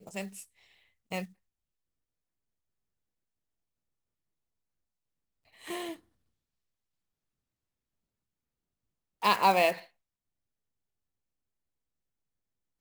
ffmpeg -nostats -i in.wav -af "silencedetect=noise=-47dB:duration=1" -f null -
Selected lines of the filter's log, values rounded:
silence_start: 1.26
silence_end: 5.61 | silence_duration: 4.35
silence_start: 5.96
silence_end: 9.22 | silence_duration: 3.26
silence_start: 9.84
silence_end: 12.81 | silence_duration: 2.96